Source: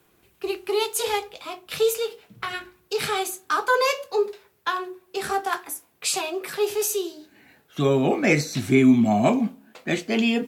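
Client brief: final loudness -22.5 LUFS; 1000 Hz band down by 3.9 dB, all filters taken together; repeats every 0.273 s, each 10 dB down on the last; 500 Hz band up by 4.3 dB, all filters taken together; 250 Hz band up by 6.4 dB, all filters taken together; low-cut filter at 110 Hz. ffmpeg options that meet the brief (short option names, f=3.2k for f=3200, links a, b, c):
-af "highpass=110,equalizer=f=250:t=o:g=6.5,equalizer=f=500:t=o:g=4.5,equalizer=f=1k:t=o:g=-7.5,aecho=1:1:273|546|819|1092:0.316|0.101|0.0324|0.0104,volume=-3dB"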